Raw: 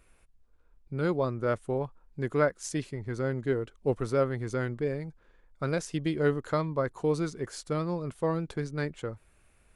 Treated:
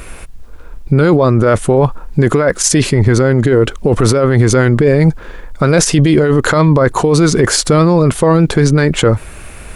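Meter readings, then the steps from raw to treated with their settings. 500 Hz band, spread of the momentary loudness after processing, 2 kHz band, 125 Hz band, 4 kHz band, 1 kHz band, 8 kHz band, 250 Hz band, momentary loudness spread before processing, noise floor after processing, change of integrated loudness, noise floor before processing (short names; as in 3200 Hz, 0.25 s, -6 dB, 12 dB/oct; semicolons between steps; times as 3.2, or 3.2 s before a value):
+18.0 dB, 4 LU, +19.0 dB, +22.5 dB, +25.5 dB, +18.5 dB, +27.5 dB, +20.5 dB, 9 LU, -32 dBFS, +20.0 dB, -64 dBFS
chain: negative-ratio compressor -33 dBFS, ratio -1; maximiser +29.5 dB; gain -1 dB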